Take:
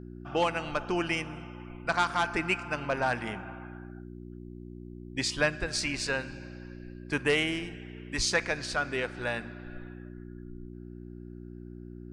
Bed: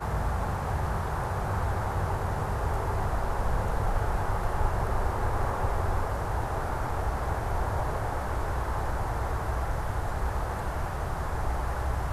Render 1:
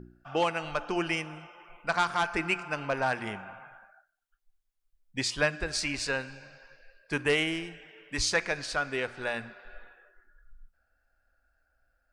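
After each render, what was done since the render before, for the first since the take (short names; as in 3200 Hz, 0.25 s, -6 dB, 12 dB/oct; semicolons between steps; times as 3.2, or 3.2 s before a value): de-hum 60 Hz, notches 6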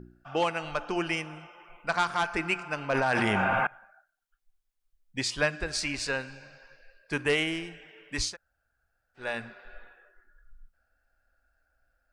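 2.9–3.67 fast leveller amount 100%; 8.29–9.22 room tone, crossfade 0.16 s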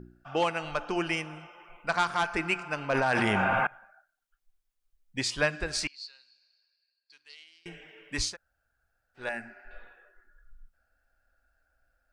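5.87–7.66 band-pass 4400 Hz, Q 13; 9.29–9.71 fixed phaser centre 730 Hz, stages 8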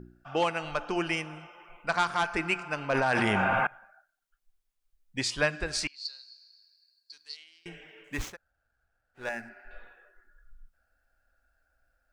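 6.05–7.37 resonant high shelf 3600 Hz +6.5 dB, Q 3; 8.04–9.49 median filter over 9 samples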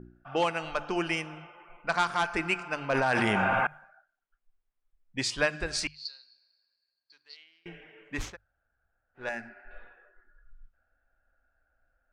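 low-pass opened by the level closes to 2000 Hz, open at -26.5 dBFS; notches 50/100/150 Hz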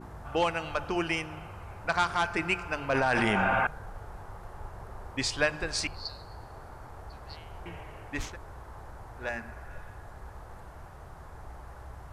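add bed -15.5 dB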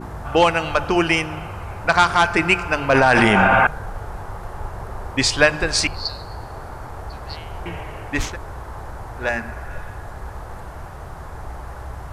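gain +12 dB; limiter -3 dBFS, peak gain reduction 2 dB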